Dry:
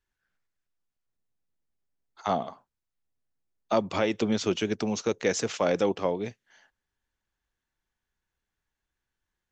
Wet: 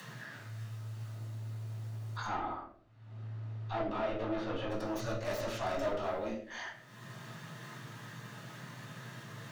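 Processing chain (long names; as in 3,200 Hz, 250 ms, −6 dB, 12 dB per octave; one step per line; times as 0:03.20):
stylus tracing distortion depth 0.18 ms
frequency shifter +110 Hz
high-pass filter 97 Hz
tube saturation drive 30 dB, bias 0.55
upward compression, threshold −38 dBFS
brickwall limiter −44 dBFS, peak gain reduction 17.5 dB
thirty-one-band graphic EQ 160 Hz −4 dB, 630 Hz +6 dB, 1,250 Hz +9 dB
noise that follows the level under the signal 34 dB
0:02.26–0:04.70: low-pass filter 3,000 Hz 12 dB per octave
convolution reverb RT60 0.55 s, pre-delay 4 ms, DRR −6 dB
level +3 dB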